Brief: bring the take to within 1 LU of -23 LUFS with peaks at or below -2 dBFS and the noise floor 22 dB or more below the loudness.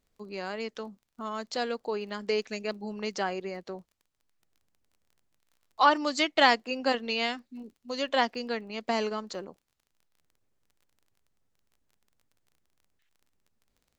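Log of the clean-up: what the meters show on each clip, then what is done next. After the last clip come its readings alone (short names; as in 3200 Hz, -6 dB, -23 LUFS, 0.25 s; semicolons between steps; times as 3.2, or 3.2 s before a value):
ticks 26/s; loudness -29.5 LUFS; peak -5.5 dBFS; loudness target -23.0 LUFS
-> de-click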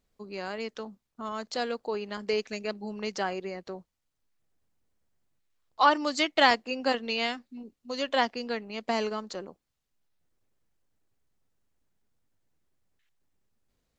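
ticks 0/s; loudness -29.5 LUFS; peak -5.5 dBFS; loudness target -23.0 LUFS
-> gain +6.5 dB; limiter -2 dBFS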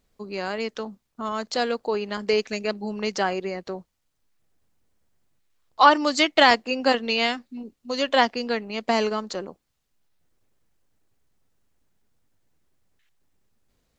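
loudness -23.0 LUFS; peak -2.0 dBFS; noise floor -75 dBFS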